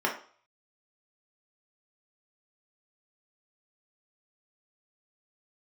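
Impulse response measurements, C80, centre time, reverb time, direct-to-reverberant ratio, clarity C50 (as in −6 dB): 13.5 dB, 22 ms, 0.45 s, −2.0 dB, 8.0 dB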